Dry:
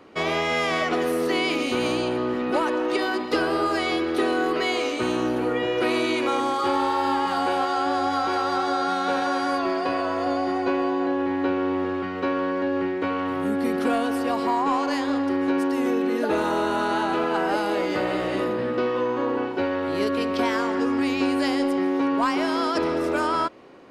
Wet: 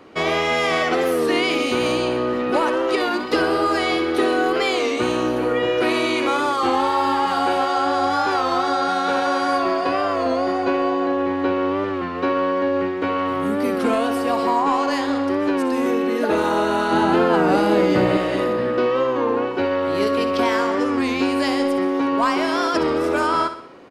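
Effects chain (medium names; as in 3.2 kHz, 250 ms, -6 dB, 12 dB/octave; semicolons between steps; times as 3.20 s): 16.92–18.17 s: peaking EQ 140 Hz +11 dB 2.3 oct; feedback delay 63 ms, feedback 48%, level -10.5 dB; warped record 33 1/3 rpm, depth 100 cents; trim +3.5 dB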